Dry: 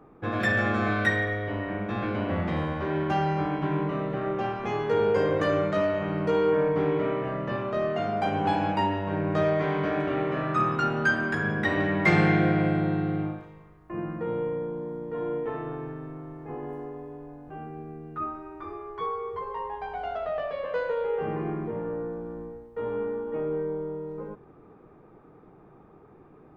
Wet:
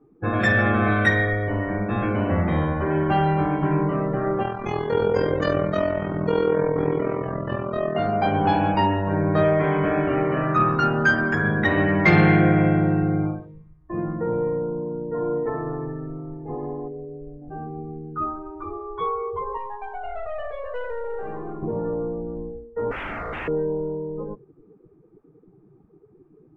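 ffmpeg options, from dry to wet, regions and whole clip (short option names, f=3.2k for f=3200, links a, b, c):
-filter_complex "[0:a]asettb=1/sr,asplit=3[a][b][c];[a]atrim=end=4.434[d];[b]atrim=start=4.43:end=7.96,asetpts=PTS-STARTPTS,afade=t=in:d=0.004:c=qsin,afade=t=out:st=3.526:d=0.004:c=qsin,bass=f=250:g=1,treble=f=4k:g=9,tremolo=f=42:d=0.75[e];[c]atrim=start=7.956[f];[d][e]acrossfade=d=0.004:c1=hsin:c2=qsin[g];[g][f]acrossfade=d=0.004:c1=qsin:c2=hsin,asettb=1/sr,asplit=3[h][i][j];[h]atrim=end=16.884[k];[i]atrim=start=16.88:end=17.42,asetpts=PTS-STARTPTS,afade=t=in:d=0.004:c=qsin,afade=t=out:st=0.536:d=0.004:c=qsin,equalizer=f=1.1k:w=0.9:g=-9.5,asplit=2[l][m];[m]adelay=39,volume=-8dB[n];[l][n]amix=inputs=2:normalize=0,atrim=end_sample=23814[o];[j]atrim=start=17.416[p];[k][o]acrossfade=d=0.004:c1=hsin:c2=qsin[q];[q][p]acrossfade=d=0.004:c1=qsin:c2=hsin,asettb=1/sr,asplit=3[r][s][t];[r]atrim=end=19.574[u];[s]atrim=start=19.57:end=21.63,asetpts=PTS-STARTPTS,afade=t=in:d=0.004:c=qsin,afade=t=out:st=2.056:d=0.004:c=qsin,highpass=f=500:p=1,aeval=exprs='(tanh(44.7*val(0)+0.35)-tanh(0.35))/44.7':c=same[v];[t]atrim=start=21.626[w];[u][v]acrossfade=d=0.004:c1=hsin:c2=qsin[x];[x][w]acrossfade=d=0.004:c1=qsin:c2=hsin,asettb=1/sr,asplit=3[y][z][aa];[y]atrim=end=22.914[ab];[z]atrim=start=22.91:end=23.48,asetpts=PTS-STARTPTS,afade=t=in:d=0.004:c=qsin,afade=t=out:st=0.566:d=0.004:c=qsin,highpass=f=48:p=1,lowshelf=f=430:g=10.5,aeval=exprs='0.0266*(abs(mod(val(0)/0.0266+3,4)-2)-1)':c=same[ac];[aa]atrim=start=23.476[ad];[ab][ac]acrossfade=d=0.004:c1=hsin:c2=qsin[ae];[ae][ad]acrossfade=d=0.004:c1=qsin:c2=hsin,afftdn=nr=21:nf=-41,lowshelf=f=62:g=10,acontrast=73,volume=-1.5dB"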